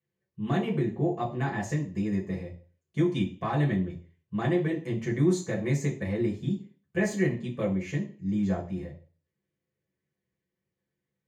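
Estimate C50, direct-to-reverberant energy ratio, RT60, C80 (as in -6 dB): 11.0 dB, -5.5 dB, 0.40 s, 15.5 dB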